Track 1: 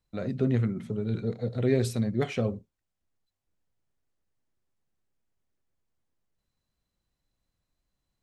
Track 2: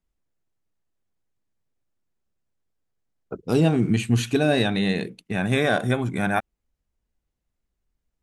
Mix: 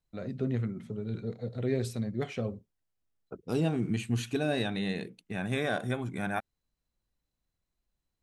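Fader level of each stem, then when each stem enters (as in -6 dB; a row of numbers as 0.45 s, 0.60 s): -5.5 dB, -9.5 dB; 0.00 s, 0.00 s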